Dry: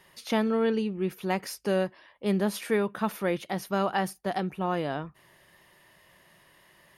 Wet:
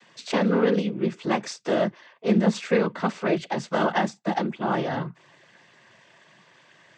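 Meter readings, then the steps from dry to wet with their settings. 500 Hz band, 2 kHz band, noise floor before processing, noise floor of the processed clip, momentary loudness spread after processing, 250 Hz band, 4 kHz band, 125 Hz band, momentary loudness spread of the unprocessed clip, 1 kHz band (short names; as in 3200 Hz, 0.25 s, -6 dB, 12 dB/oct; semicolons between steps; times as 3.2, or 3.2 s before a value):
+3.5 dB, +4.5 dB, -61 dBFS, -58 dBFS, 7 LU, +4.5 dB, +3.5 dB, +5.0 dB, 6 LU, +4.0 dB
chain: noise vocoder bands 16; gain +4.5 dB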